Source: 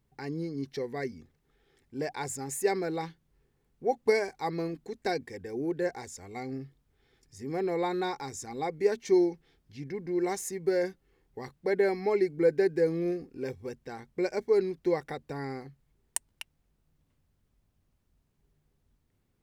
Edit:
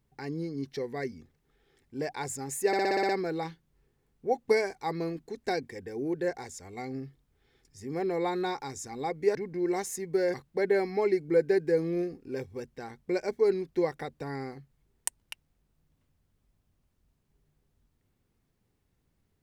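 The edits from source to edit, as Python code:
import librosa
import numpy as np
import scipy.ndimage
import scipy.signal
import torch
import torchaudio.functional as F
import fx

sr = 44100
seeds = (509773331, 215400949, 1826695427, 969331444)

y = fx.edit(x, sr, fx.stutter(start_s=2.67, slice_s=0.06, count=8),
    fx.cut(start_s=8.93, length_s=0.95),
    fx.cut(start_s=10.87, length_s=0.56), tone=tone)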